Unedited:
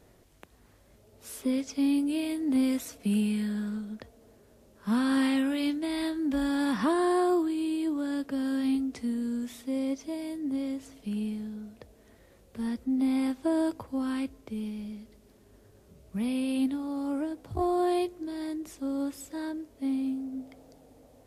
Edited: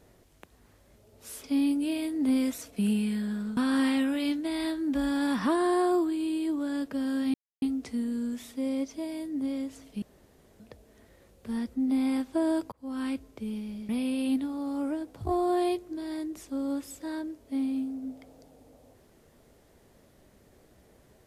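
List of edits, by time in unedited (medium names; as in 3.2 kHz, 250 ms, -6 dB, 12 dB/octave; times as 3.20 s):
1.44–1.71 s: delete
3.84–4.95 s: delete
8.72 s: insert silence 0.28 s
11.12–11.70 s: room tone
13.82–14.16 s: fade in
14.99–16.19 s: delete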